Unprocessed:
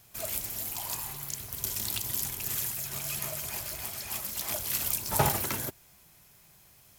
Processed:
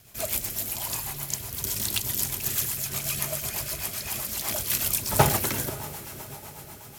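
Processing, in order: echo that smears into a reverb 577 ms, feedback 55%, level -14 dB; rotary cabinet horn 8 Hz; trim +7.5 dB

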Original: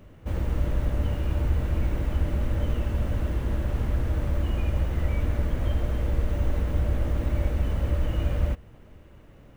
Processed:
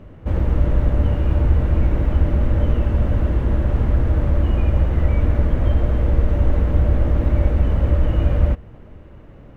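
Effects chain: low-pass 1.5 kHz 6 dB/octave; trim +8.5 dB

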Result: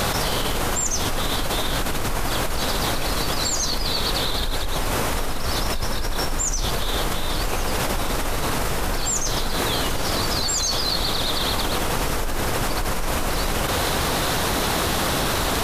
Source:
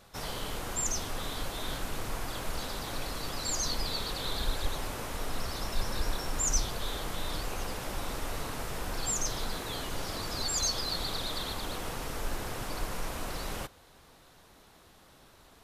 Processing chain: level flattener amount 100%

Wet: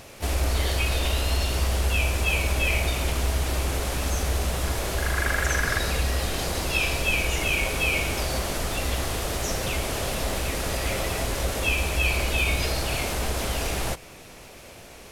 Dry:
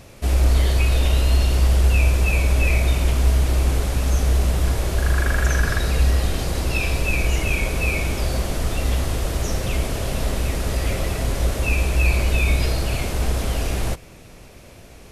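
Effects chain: in parallel at -3 dB: compression, threshold -23 dBFS, peak gain reduction 11.5 dB; on the sum: harmony voices +4 st -10 dB; bass shelf 310 Hz -9.5 dB; trim -2 dB

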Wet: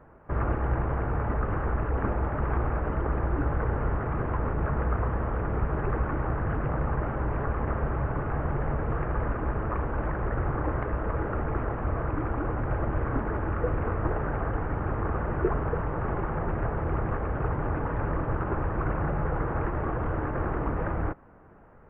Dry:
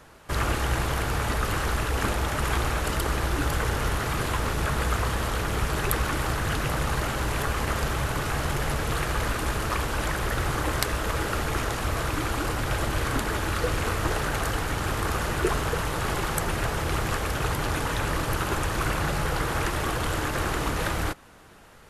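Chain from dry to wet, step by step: Gaussian low-pass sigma 5.9 samples

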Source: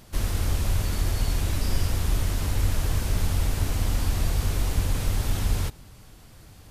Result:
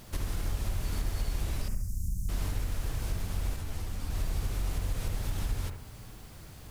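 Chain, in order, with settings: compression 6:1, threshold -30 dBFS, peak gain reduction 12.5 dB; added noise blue -63 dBFS; 1.68–2.29 s: elliptic band-stop 210–6400 Hz, stop band 40 dB; on a send: bucket-brigade echo 67 ms, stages 1024, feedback 46%, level -6 dB; 3.56–4.10 s: on the sum: three-phase chorus

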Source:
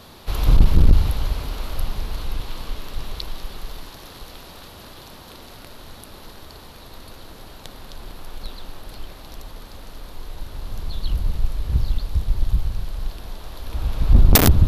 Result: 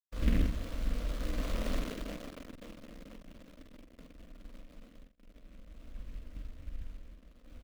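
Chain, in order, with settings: send-on-delta sampling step -32 dBFS; Doppler pass-by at 3.38 s, 39 m/s, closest 23 m; gate with hold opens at -49 dBFS; peaking EQ 310 Hz +8 dB 1.5 oct; static phaser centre 560 Hz, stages 8; granular stretch 0.52×, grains 33 ms; doubling 46 ms -6 dB; formant shift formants +3 st; careless resampling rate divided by 6×, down filtered, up hold; delay time shaken by noise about 2.1 kHz, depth 0.11 ms; trim +1 dB

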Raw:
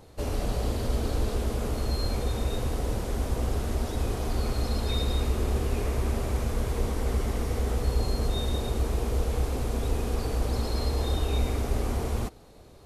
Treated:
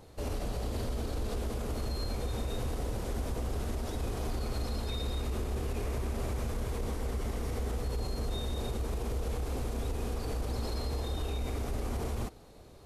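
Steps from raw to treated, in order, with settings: peak limiter -24 dBFS, peak gain reduction 10 dB; trim -2 dB

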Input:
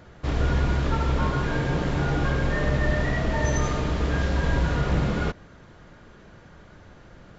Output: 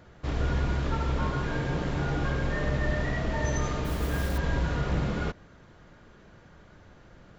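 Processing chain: 3.84–4.38 s: modulation noise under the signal 19 dB; trim -4.5 dB

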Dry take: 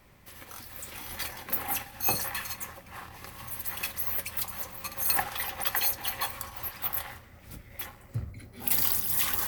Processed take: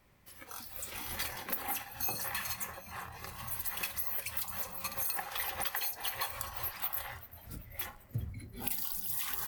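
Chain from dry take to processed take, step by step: compression 16:1, threshold -31 dBFS, peak gain reduction 12 dB; frequency-shifting echo 388 ms, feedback 62%, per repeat -72 Hz, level -16 dB; spectral noise reduction 8 dB

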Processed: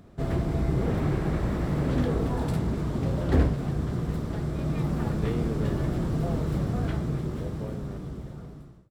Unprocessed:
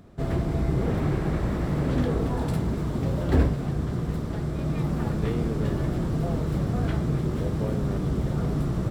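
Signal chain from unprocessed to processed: fade out at the end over 2.41 s; 2.53–3.58 s: loudspeaker Doppler distortion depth 0.26 ms; trim -1 dB

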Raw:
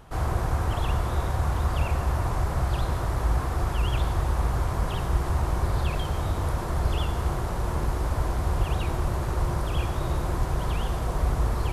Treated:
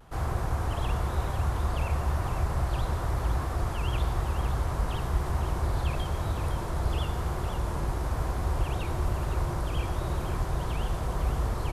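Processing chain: vibrato 1 Hz 43 cents; delay 508 ms -9 dB; trim -3.5 dB

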